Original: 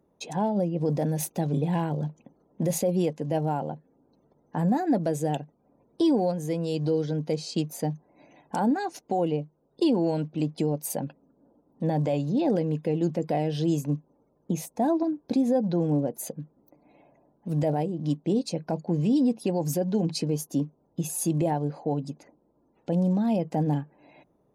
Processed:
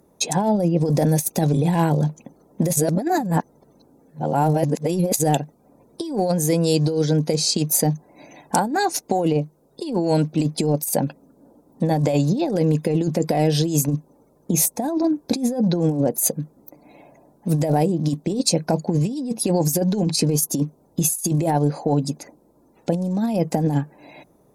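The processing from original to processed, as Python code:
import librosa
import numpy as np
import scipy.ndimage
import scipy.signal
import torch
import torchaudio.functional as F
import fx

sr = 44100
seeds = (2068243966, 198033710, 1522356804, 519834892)

y = fx.edit(x, sr, fx.reverse_span(start_s=2.76, length_s=2.43), tone=tone)
y = fx.peak_eq(y, sr, hz=12000.0, db=13.0, octaves=2.1)
y = fx.over_compress(y, sr, threshold_db=-26.0, ratio=-0.5)
y = fx.peak_eq(y, sr, hz=3000.0, db=-6.5, octaves=0.25)
y = F.gain(torch.from_numpy(y), 7.5).numpy()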